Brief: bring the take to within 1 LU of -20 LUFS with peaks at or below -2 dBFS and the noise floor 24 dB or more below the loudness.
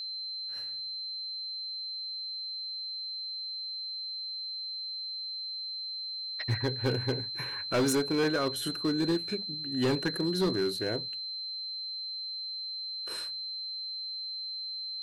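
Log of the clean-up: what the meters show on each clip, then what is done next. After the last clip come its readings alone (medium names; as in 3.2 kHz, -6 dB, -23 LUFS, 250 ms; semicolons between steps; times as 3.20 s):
clipped samples 0.9%; clipping level -22.5 dBFS; steady tone 4.1 kHz; tone level -35 dBFS; loudness -32.5 LUFS; peak level -22.5 dBFS; loudness target -20.0 LUFS
-> clip repair -22.5 dBFS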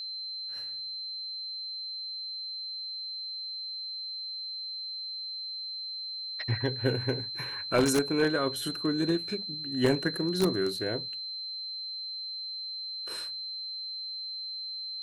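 clipped samples 0.0%; steady tone 4.1 kHz; tone level -35 dBFS
-> band-stop 4.1 kHz, Q 30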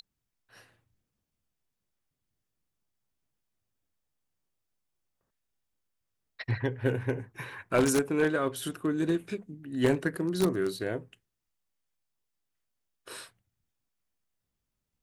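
steady tone not found; loudness -30.0 LUFS; peak level -13.0 dBFS; loudness target -20.0 LUFS
-> trim +10 dB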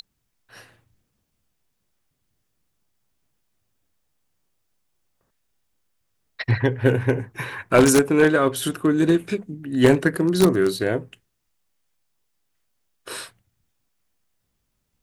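loudness -20.0 LUFS; peak level -3.0 dBFS; noise floor -74 dBFS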